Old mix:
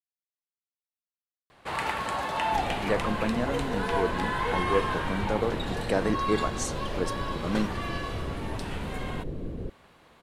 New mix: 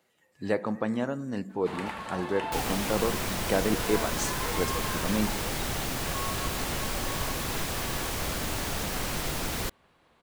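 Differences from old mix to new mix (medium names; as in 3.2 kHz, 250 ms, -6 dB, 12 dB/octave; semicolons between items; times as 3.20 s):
speech: entry -2.40 s; first sound -7.0 dB; second sound: remove steep low-pass 520 Hz 36 dB/octave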